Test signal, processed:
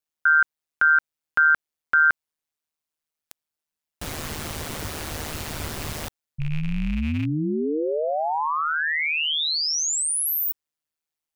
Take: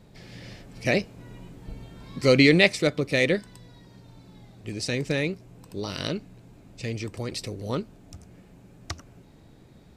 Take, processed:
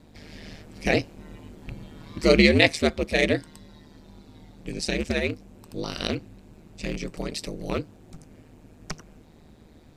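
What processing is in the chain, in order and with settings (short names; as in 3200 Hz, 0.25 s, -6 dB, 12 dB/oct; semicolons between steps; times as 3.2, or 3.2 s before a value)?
rattling part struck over -29 dBFS, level -28 dBFS; ring modulator 77 Hz; gain +3.5 dB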